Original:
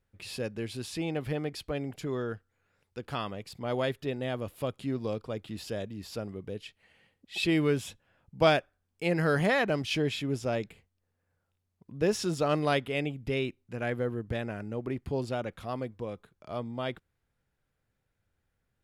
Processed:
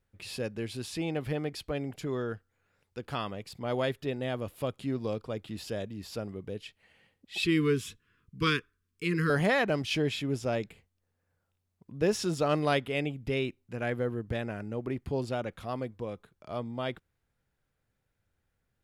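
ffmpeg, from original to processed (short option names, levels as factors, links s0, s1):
-filter_complex "[0:a]asettb=1/sr,asplit=3[s0][s1][s2];[s0]atrim=end=7.424[s3];[s1]atrim=start=7.42:end=9.3,asetpts=PTS-STARTPTS,afade=t=in:d=0.004:c=qsin,afade=t=out:st=1.876:d=0.004:c=qsin,asuperstop=centerf=690:order=20:qfactor=1.3[s4];[s2]atrim=start=9.296[s5];[s3][s4]acrossfade=d=0.004:c1=hsin:c2=qsin[s6];[s6][s5]acrossfade=d=0.004:c1=qsin:c2=hsin"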